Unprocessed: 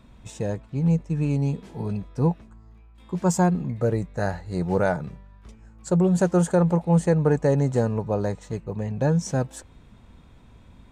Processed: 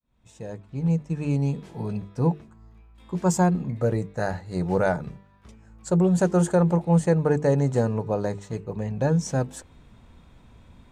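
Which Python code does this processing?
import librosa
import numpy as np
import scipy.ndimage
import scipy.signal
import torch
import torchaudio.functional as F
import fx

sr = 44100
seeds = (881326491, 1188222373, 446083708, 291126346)

y = fx.fade_in_head(x, sr, length_s=1.11)
y = fx.hum_notches(y, sr, base_hz=50, count=9)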